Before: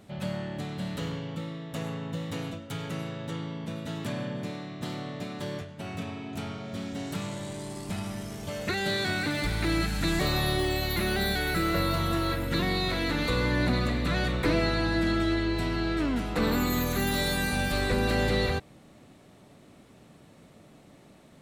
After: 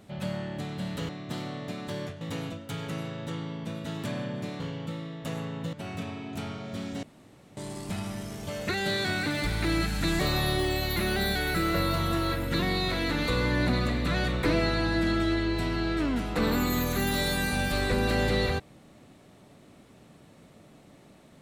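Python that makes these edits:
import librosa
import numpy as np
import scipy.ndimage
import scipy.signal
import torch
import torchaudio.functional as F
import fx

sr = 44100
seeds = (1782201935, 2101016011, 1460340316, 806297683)

y = fx.edit(x, sr, fx.swap(start_s=1.09, length_s=1.13, other_s=4.61, other_length_s=1.12),
    fx.room_tone_fill(start_s=7.03, length_s=0.54), tone=tone)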